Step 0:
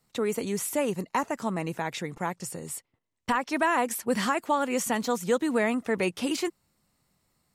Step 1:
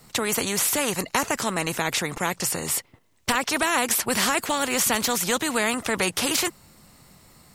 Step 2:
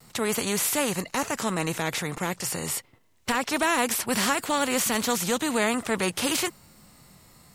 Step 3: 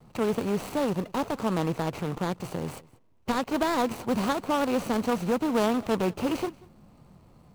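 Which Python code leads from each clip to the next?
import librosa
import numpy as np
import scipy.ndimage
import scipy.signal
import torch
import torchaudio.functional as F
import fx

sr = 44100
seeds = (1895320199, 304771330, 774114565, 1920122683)

y1 = fx.spectral_comp(x, sr, ratio=2.0)
y1 = F.gain(torch.from_numpy(y1), 6.5).numpy()
y2 = np.clip(10.0 ** (13.0 / 20.0) * y1, -1.0, 1.0) / 10.0 ** (13.0 / 20.0)
y2 = fx.hpss(y2, sr, part='harmonic', gain_db=8)
y2 = fx.vibrato(y2, sr, rate_hz=0.5, depth_cents=19.0)
y2 = F.gain(torch.from_numpy(y2), -6.5).numpy()
y3 = scipy.ndimage.median_filter(y2, 25, mode='constant')
y3 = y3 + 10.0 ** (-23.5 / 20.0) * np.pad(y3, (int(186 * sr / 1000.0), 0))[:len(y3)]
y3 = F.gain(torch.from_numpy(y3), 2.0).numpy()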